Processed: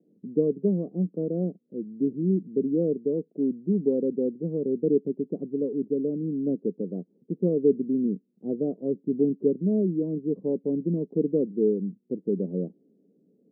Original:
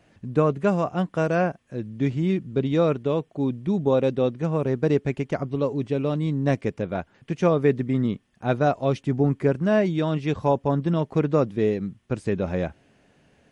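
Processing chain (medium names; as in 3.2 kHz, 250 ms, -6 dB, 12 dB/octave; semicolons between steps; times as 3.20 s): elliptic band-pass 180–460 Hz, stop band 70 dB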